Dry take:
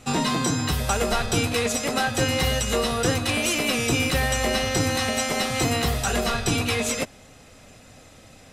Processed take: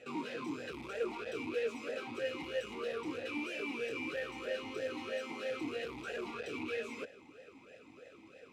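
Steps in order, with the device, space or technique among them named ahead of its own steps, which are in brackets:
talk box (tube saturation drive 35 dB, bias 0.6; formant filter swept between two vowels e-u 3.1 Hz)
level +9 dB

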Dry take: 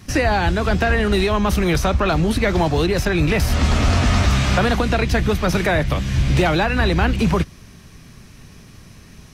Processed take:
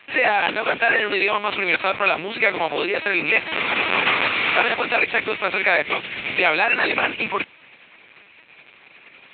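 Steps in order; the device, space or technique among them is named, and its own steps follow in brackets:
talking toy (linear-prediction vocoder at 8 kHz pitch kept; high-pass filter 500 Hz 12 dB per octave; parametric band 2,400 Hz +11 dB 0.54 octaves)

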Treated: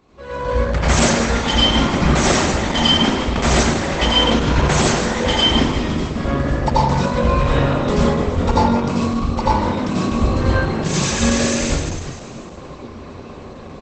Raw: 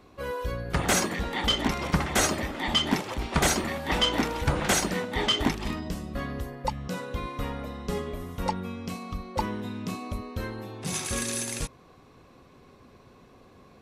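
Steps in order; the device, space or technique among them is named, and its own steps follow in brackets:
0:04.21–0:04.64: EQ curve with evenly spaced ripples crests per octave 1.5, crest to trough 7 dB
echo with shifted repeats 154 ms, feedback 57%, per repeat +46 Hz, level −8.5 dB
speakerphone in a meeting room (convolution reverb RT60 0.80 s, pre-delay 80 ms, DRR −6 dB; far-end echo of a speakerphone 110 ms, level −13 dB; automatic gain control gain up to 12 dB; level −1 dB; Opus 12 kbit/s 48,000 Hz)

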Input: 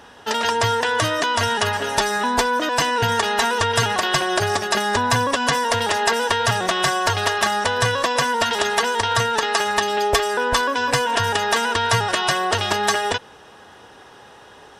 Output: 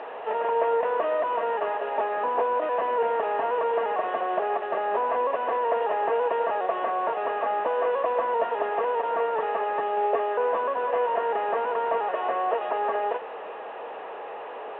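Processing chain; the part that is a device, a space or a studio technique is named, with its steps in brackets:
digital answering machine (band-pass filter 400–3,100 Hz; linear delta modulator 16 kbit/s, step −27 dBFS; loudspeaker in its box 440–3,400 Hz, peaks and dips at 460 Hz +8 dB, 650 Hz +6 dB, 1,500 Hz −9 dB, 2,200 Hz −10 dB, 3,200 Hz −9 dB)
level −3.5 dB

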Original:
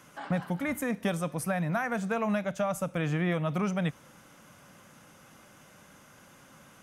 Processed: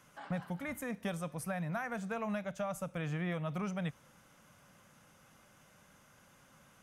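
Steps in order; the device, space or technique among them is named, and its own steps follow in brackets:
low shelf boost with a cut just above (low-shelf EQ 62 Hz +6.5 dB; parametric band 310 Hz −4 dB 0.77 octaves)
level −7.5 dB

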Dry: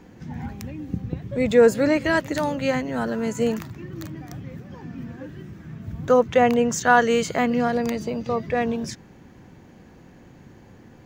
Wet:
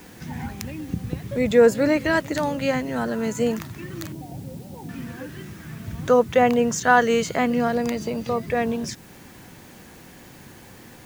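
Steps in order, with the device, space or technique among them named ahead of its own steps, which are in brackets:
0:04.12–0:04.89: Chebyshev low-pass filter 950 Hz, order 8
noise-reduction cassette on a plain deck (one half of a high-frequency compander encoder only; tape wow and flutter 25 cents; white noise bed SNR 29 dB)

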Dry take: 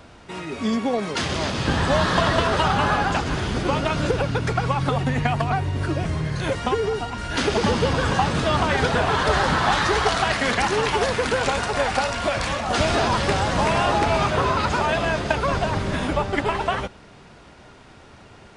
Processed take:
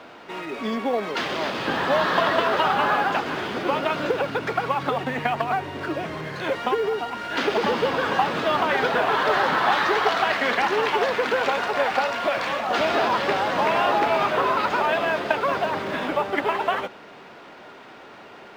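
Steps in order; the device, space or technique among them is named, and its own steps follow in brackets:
phone line with mismatched companding (band-pass filter 310–3,400 Hz; mu-law and A-law mismatch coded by mu)

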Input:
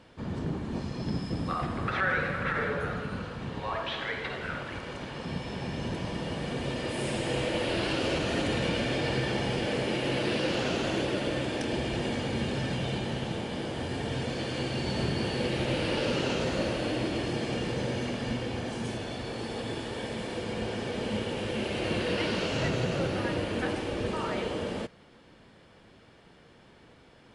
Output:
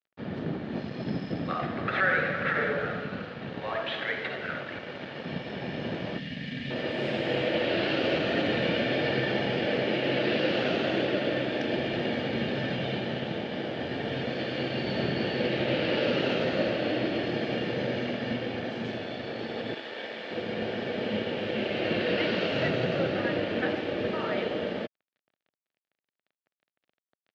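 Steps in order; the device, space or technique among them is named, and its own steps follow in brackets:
0:06.18–0:06.70: gain on a spectral selection 290–1,600 Hz −16 dB
0:19.74–0:20.31: meter weighting curve A
blown loudspeaker (dead-zone distortion −47 dBFS; loudspeaker in its box 150–4,100 Hz, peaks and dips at 620 Hz +4 dB, 1,000 Hz −8 dB, 1,800 Hz +3 dB)
level +3 dB

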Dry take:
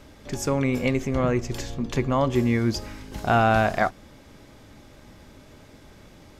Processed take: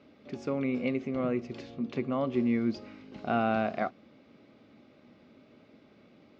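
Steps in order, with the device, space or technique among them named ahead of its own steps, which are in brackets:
kitchen radio (loudspeaker in its box 190–3,700 Hz, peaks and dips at 230 Hz +5 dB, 920 Hz −9 dB, 1,700 Hz −9 dB, 3,300 Hz −6 dB)
high-shelf EQ 7,200 Hz +5 dB
level −6.5 dB

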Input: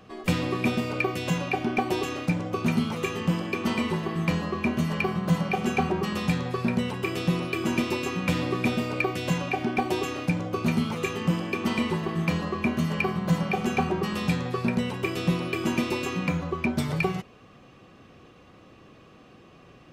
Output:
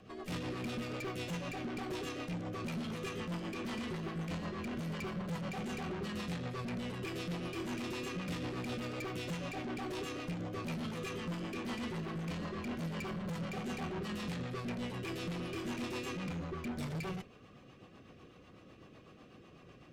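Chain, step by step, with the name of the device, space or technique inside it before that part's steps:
overdriven rotary cabinet (tube saturation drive 33 dB, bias 0.35; rotating-speaker cabinet horn 8 Hz)
level −2 dB

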